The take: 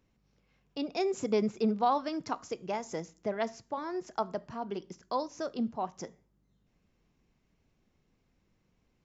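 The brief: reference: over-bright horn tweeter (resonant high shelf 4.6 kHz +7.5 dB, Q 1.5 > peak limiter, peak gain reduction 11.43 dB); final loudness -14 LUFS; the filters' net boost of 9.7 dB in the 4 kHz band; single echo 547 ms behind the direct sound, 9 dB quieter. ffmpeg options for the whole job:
-af "equalizer=f=4000:t=o:g=8.5,highshelf=f=4600:t=q:w=1.5:g=7.5,aecho=1:1:547:0.355,volume=13.3,alimiter=limit=0.668:level=0:latency=1"

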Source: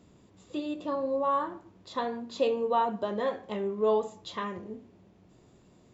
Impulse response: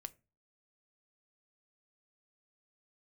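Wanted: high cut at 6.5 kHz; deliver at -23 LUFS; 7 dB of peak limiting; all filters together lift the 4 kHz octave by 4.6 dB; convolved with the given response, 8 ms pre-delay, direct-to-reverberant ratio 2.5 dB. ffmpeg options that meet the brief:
-filter_complex "[0:a]lowpass=6500,equalizer=f=4000:t=o:g=6,alimiter=limit=0.0841:level=0:latency=1,asplit=2[s0][s1];[1:a]atrim=start_sample=2205,adelay=8[s2];[s1][s2]afir=irnorm=-1:irlink=0,volume=1.33[s3];[s0][s3]amix=inputs=2:normalize=0,volume=2.66"

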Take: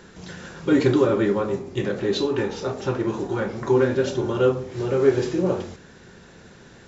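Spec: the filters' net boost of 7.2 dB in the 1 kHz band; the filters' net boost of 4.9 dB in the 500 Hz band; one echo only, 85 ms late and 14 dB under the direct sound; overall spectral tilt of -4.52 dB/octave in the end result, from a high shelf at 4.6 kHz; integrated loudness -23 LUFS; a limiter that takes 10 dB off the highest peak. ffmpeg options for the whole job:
-af "equalizer=f=500:t=o:g=5,equalizer=f=1000:t=o:g=8,highshelf=f=4600:g=-7,alimiter=limit=0.282:level=0:latency=1,aecho=1:1:85:0.2,volume=0.841"

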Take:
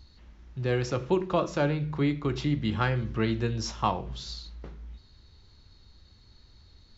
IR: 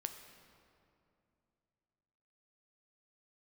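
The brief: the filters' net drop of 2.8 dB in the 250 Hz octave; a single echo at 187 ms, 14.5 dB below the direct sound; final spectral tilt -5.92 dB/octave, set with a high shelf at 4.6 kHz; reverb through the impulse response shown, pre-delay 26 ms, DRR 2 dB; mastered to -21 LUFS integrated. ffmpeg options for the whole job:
-filter_complex "[0:a]equalizer=f=250:t=o:g=-4,highshelf=f=4600:g=-5.5,aecho=1:1:187:0.188,asplit=2[s0][s1];[1:a]atrim=start_sample=2205,adelay=26[s2];[s1][s2]afir=irnorm=-1:irlink=0,volume=0.944[s3];[s0][s3]amix=inputs=2:normalize=0,volume=2.24"

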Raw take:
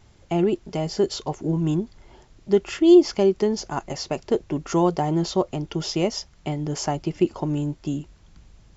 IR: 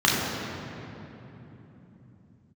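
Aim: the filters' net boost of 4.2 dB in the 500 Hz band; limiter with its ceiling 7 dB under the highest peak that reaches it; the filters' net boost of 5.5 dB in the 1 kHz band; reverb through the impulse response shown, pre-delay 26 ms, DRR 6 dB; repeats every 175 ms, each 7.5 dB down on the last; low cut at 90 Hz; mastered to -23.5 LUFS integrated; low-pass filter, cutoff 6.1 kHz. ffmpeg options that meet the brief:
-filter_complex "[0:a]highpass=90,lowpass=6100,equalizer=f=500:t=o:g=5.5,equalizer=f=1000:t=o:g=5,alimiter=limit=0.355:level=0:latency=1,aecho=1:1:175|350|525|700|875:0.422|0.177|0.0744|0.0312|0.0131,asplit=2[s0][s1];[1:a]atrim=start_sample=2205,adelay=26[s2];[s1][s2]afir=irnorm=-1:irlink=0,volume=0.0531[s3];[s0][s3]amix=inputs=2:normalize=0,volume=0.668"

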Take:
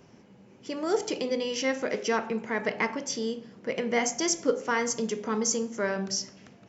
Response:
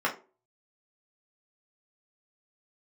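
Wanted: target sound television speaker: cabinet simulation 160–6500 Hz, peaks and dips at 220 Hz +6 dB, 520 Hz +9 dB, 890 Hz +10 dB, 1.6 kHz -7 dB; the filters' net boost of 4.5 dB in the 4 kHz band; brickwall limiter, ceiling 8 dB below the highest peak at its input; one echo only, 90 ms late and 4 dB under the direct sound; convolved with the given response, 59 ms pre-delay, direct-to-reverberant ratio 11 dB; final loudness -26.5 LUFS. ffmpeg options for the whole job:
-filter_complex "[0:a]equalizer=f=4000:t=o:g=7.5,alimiter=limit=0.112:level=0:latency=1,aecho=1:1:90:0.631,asplit=2[s0][s1];[1:a]atrim=start_sample=2205,adelay=59[s2];[s1][s2]afir=irnorm=-1:irlink=0,volume=0.075[s3];[s0][s3]amix=inputs=2:normalize=0,highpass=f=160:w=0.5412,highpass=f=160:w=1.3066,equalizer=f=220:t=q:w=4:g=6,equalizer=f=520:t=q:w=4:g=9,equalizer=f=890:t=q:w=4:g=10,equalizer=f=1600:t=q:w=4:g=-7,lowpass=f=6500:w=0.5412,lowpass=f=6500:w=1.3066,volume=0.841"

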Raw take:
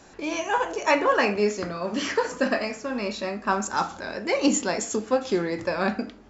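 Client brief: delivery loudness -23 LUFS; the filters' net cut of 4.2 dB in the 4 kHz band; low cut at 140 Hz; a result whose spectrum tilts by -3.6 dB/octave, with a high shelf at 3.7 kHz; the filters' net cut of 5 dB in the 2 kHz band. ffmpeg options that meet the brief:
-af "highpass=140,equalizer=f=2000:t=o:g=-6,highshelf=f=3700:g=6,equalizer=f=4000:t=o:g=-8.5,volume=1.5"

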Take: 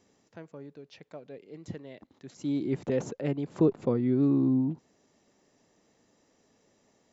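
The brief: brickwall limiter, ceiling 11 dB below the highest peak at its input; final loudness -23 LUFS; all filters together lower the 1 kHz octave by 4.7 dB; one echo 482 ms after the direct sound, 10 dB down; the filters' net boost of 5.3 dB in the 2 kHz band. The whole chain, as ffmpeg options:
-af "equalizer=f=1000:t=o:g=-8,equalizer=f=2000:t=o:g=8,alimiter=level_in=1.06:limit=0.0631:level=0:latency=1,volume=0.944,aecho=1:1:482:0.316,volume=3.98"

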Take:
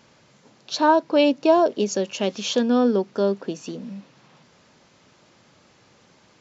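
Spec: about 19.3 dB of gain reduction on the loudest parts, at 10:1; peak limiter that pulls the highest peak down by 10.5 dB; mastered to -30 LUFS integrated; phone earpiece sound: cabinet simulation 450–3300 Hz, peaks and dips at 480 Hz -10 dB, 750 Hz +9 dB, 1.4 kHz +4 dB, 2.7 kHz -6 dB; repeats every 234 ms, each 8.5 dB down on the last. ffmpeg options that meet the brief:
-af "acompressor=threshold=0.0282:ratio=10,alimiter=level_in=2.37:limit=0.0631:level=0:latency=1,volume=0.422,highpass=450,equalizer=f=480:t=q:w=4:g=-10,equalizer=f=750:t=q:w=4:g=9,equalizer=f=1400:t=q:w=4:g=4,equalizer=f=2700:t=q:w=4:g=-6,lowpass=f=3300:w=0.5412,lowpass=f=3300:w=1.3066,aecho=1:1:234|468|702|936:0.376|0.143|0.0543|0.0206,volume=5.31"

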